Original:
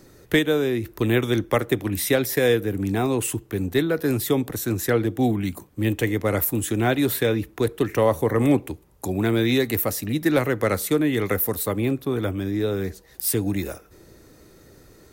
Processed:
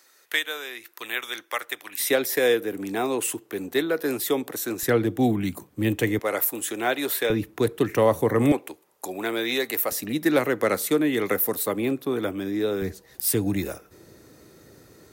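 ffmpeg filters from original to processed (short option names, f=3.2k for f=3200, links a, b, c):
-af "asetnsamples=n=441:p=0,asendcmd='2 highpass f 340;4.83 highpass f 110;6.19 highpass f 470;7.3 highpass f 110;8.52 highpass f 480;9.92 highpass f 220;12.82 highpass f 90',highpass=1.2k"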